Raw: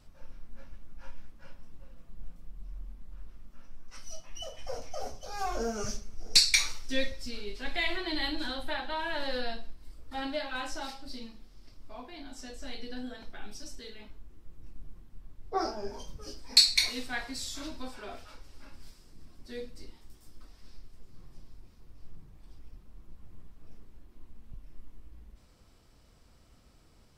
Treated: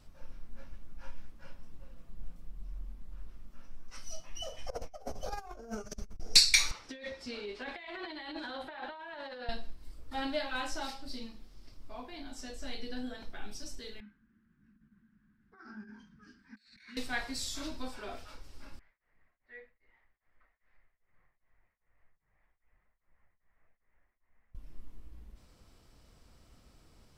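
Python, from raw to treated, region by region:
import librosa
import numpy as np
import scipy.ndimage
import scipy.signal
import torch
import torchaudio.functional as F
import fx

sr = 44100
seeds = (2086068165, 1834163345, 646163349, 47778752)

y = fx.chain(x, sr, fx.peak_eq(hz=5000.0, db=-7.5, octaves=2.6),
    fx.over_compress(threshold_db=-39.0, ratio=-0.5), at=(4.7, 6.2))
y = fx.chain(y, sr, fx.bandpass_q(hz=870.0, q=0.51),
    fx.over_compress(threshold_db=-43.0, ratio=-1.0), at=(6.71, 9.49))
y = fx.chain(y, sr, fx.over_compress(threshold_db=-36.0, ratio=-1.0),
    fx.double_bandpass(hz=580.0, octaves=2.9), at=(14.0, 16.97))
y = fx.chain(y, sr, fx.ladder_lowpass(hz=2100.0, resonance_pct=75),
    fx.low_shelf_res(hz=440.0, db=-10.0, q=1.5),
    fx.tremolo_abs(hz=2.5), at=(18.79, 24.55))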